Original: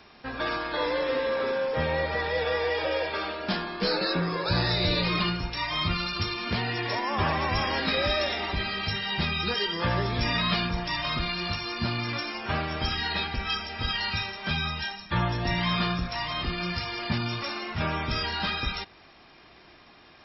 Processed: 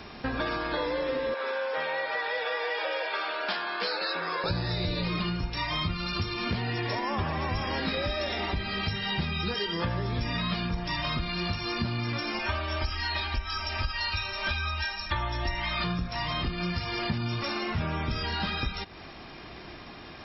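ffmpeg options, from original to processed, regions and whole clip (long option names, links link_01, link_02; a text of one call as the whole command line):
ffmpeg -i in.wav -filter_complex "[0:a]asettb=1/sr,asplit=3[link_01][link_02][link_03];[link_01]atrim=end=1.344[link_04];[link_02]atrim=start=1.34:end=4.44,asetpts=PTS-STARTPTS,afade=type=in:duration=0.004:curve=qsin,afade=type=out:start_time=3.096:duration=0.004:curve=qsin,aeval=exprs='val(0)+0.00562*sin(2*PI*1500*n/s)':channel_layout=same,highpass=740,lowpass=4800[link_05];[link_03]atrim=start=4.436[link_06];[link_04][link_05]acrossfade=duration=0.004:curve1=hsin:curve2=qsin[link_07];[link_07][link_06]acrossfade=duration=0.004:curve1=qsin:curve2=hsin,asettb=1/sr,asplit=3[link_08][link_09][link_10];[link_08]atrim=end=12.394[link_11];[link_09]atrim=start=12.39:end=15.84,asetpts=PTS-STARTPTS,afade=type=in:duration=0.004:curve=qsin,afade=type=out:start_time=3.446:duration=0.004:curve=qsin,equalizer=frequency=230:width=0.86:gain=-13,aecho=1:1:3.3:0.88,atrim=end_sample=152145[link_12];[link_10]atrim=start=15.836[link_13];[link_11][link_12]acrossfade=duration=0.004:curve1=hsin:curve2=qsin[link_14];[link_14][link_13]acrossfade=duration=0.004:curve1=qsin:curve2=hsin,lowshelf=frequency=360:gain=6.5,acompressor=threshold=-35dB:ratio=6,volume=7dB" out.wav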